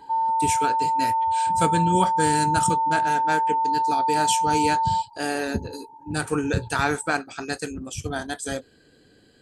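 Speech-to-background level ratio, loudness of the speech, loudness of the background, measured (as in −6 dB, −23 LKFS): −4.5 dB, −27.0 LKFS, −22.5 LKFS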